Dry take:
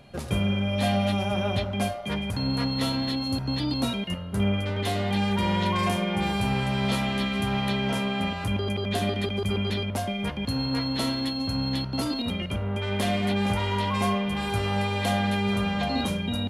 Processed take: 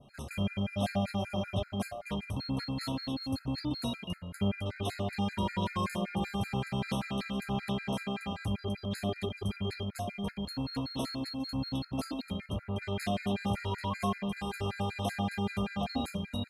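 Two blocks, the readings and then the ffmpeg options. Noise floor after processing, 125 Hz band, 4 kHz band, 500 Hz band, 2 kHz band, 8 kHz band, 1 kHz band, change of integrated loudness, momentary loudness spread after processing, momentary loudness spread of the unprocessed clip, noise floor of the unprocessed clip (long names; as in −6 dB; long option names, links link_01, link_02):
−53 dBFS, −7.5 dB, −10.0 dB, −8.0 dB, −10.0 dB, −8.0 dB, −8.5 dB, −8.0 dB, 4 LU, 4 LU, −33 dBFS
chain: -af "adynamicequalizer=threshold=0.00891:dfrequency=2900:dqfactor=0.85:tfrequency=2900:tqfactor=0.85:attack=5:release=100:ratio=0.375:range=1.5:mode=cutabove:tftype=bell,afftfilt=real='re*gt(sin(2*PI*5.2*pts/sr)*(1-2*mod(floor(b*sr/1024/1300),2)),0)':imag='im*gt(sin(2*PI*5.2*pts/sr)*(1-2*mod(floor(b*sr/1024/1300),2)),0)':win_size=1024:overlap=0.75,volume=-4.5dB"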